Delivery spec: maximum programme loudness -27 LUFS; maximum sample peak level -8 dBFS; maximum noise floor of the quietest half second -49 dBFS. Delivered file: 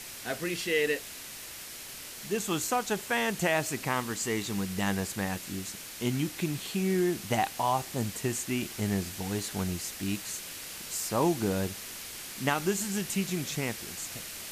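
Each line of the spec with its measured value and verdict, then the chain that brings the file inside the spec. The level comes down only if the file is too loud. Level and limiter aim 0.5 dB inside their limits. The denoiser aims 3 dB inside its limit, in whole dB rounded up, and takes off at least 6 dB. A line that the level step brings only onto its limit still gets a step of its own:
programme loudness -31.5 LUFS: pass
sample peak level -12.5 dBFS: pass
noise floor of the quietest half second -43 dBFS: fail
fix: noise reduction 9 dB, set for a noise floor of -43 dBFS

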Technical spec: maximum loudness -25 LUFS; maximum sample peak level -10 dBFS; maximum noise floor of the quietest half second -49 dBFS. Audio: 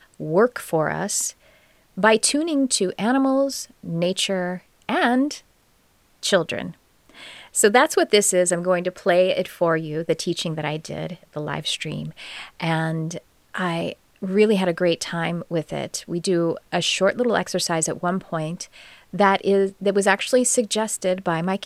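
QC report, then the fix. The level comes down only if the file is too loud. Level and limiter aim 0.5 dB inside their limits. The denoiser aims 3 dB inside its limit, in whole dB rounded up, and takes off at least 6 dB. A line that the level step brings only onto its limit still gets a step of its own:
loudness -21.5 LUFS: fail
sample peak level -2.0 dBFS: fail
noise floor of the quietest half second -60 dBFS: pass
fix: trim -4 dB; peak limiter -10.5 dBFS

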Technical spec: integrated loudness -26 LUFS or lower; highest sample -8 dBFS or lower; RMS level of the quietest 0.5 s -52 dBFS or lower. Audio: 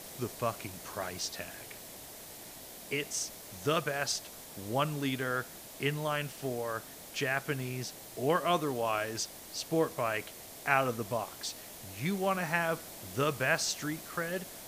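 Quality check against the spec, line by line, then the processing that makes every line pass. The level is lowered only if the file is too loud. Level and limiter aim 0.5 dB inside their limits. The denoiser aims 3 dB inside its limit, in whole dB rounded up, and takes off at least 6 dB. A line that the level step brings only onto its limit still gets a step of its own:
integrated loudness -33.5 LUFS: pass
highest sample -11.0 dBFS: pass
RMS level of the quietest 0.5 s -48 dBFS: fail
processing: noise reduction 7 dB, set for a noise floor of -48 dBFS

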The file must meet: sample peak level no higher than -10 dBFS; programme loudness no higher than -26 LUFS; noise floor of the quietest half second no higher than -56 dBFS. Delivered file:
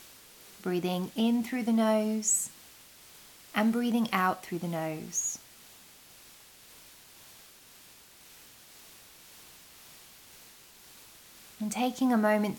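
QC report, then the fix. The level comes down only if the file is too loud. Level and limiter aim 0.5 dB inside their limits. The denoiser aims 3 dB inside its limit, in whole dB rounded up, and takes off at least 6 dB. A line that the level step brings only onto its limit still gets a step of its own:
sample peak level -12.0 dBFS: pass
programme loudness -29.5 LUFS: pass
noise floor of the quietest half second -55 dBFS: fail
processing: noise reduction 6 dB, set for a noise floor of -55 dBFS

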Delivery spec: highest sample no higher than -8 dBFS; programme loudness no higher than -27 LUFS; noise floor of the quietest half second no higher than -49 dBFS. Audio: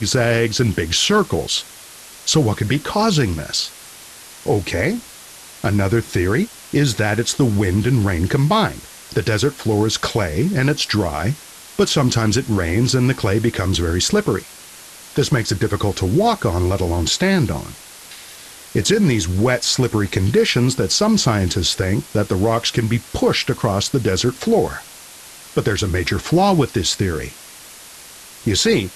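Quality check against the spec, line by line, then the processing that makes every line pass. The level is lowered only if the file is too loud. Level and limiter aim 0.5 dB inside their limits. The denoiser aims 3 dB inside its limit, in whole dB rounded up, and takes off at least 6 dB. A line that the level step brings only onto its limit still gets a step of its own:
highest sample -3.0 dBFS: fail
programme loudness -18.5 LUFS: fail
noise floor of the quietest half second -40 dBFS: fail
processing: noise reduction 6 dB, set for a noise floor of -40 dBFS; trim -9 dB

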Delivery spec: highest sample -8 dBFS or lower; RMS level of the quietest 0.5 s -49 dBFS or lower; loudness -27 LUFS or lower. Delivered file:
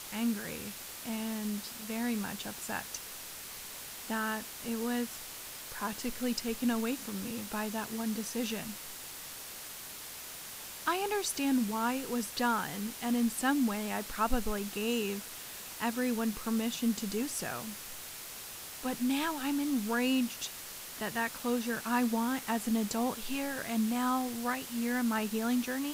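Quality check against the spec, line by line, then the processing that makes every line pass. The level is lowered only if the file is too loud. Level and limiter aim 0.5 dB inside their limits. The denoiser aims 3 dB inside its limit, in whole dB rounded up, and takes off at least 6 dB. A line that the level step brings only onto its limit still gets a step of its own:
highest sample -14.5 dBFS: pass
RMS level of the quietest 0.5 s -45 dBFS: fail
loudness -34.0 LUFS: pass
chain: noise reduction 7 dB, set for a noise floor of -45 dBFS

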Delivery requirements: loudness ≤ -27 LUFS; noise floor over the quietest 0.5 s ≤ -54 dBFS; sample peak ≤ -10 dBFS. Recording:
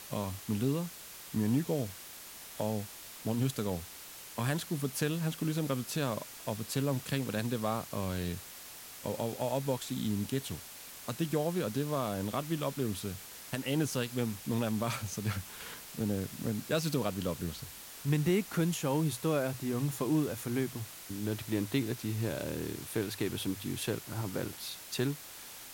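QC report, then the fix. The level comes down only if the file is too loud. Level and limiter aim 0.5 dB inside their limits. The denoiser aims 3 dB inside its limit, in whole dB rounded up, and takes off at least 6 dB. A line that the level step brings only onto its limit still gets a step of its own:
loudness -34.5 LUFS: pass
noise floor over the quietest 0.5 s -48 dBFS: fail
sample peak -17.5 dBFS: pass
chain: noise reduction 9 dB, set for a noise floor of -48 dBFS

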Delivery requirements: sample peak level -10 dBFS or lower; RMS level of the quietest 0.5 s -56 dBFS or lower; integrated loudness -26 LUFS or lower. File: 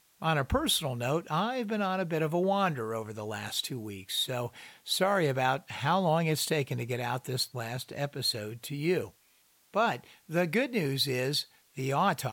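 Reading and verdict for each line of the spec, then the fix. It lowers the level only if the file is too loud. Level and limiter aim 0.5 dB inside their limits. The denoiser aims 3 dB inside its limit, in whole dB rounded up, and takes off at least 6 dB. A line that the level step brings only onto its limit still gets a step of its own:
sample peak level -15.5 dBFS: pass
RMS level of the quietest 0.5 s -66 dBFS: pass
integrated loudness -30.5 LUFS: pass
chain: none needed

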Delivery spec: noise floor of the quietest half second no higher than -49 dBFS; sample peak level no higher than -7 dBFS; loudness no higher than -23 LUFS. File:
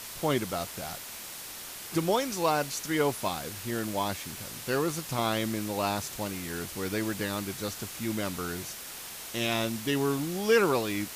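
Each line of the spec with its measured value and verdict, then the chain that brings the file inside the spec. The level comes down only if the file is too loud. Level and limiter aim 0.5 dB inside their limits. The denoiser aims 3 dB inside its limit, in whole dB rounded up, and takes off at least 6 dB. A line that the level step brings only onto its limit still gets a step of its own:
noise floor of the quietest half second -42 dBFS: fail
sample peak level -11.0 dBFS: pass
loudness -30.5 LUFS: pass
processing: noise reduction 10 dB, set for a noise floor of -42 dBFS

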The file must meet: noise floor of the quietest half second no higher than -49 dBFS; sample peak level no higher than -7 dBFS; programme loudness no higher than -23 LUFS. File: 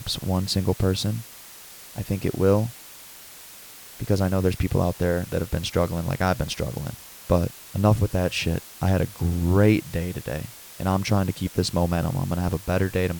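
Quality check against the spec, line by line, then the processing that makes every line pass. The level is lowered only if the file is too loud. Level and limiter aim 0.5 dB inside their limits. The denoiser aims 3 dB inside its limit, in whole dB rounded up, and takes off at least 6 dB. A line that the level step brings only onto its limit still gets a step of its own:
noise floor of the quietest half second -44 dBFS: fail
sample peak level -6.0 dBFS: fail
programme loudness -24.5 LUFS: pass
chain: noise reduction 8 dB, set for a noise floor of -44 dBFS; peak limiter -7.5 dBFS

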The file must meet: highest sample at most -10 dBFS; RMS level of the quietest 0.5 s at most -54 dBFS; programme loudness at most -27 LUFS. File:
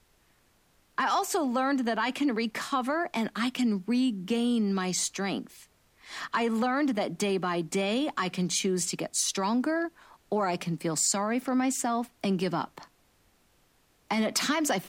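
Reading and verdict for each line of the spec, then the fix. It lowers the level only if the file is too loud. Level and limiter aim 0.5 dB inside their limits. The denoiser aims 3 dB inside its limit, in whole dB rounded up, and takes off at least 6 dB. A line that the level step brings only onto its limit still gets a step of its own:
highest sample -14.5 dBFS: pass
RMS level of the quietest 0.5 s -66 dBFS: pass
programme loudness -28.5 LUFS: pass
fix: none needed

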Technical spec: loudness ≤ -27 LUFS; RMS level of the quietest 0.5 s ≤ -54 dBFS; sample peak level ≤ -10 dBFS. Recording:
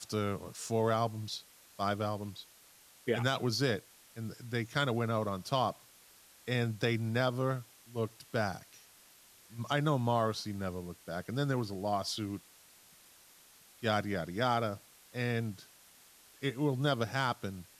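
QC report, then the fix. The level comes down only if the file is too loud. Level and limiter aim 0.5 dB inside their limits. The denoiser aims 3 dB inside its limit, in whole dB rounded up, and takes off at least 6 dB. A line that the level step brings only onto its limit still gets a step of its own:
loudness -34.5 LUFS: pass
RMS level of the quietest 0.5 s -60 dBFS: pass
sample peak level -16.0 dBFS: pass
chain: none needed

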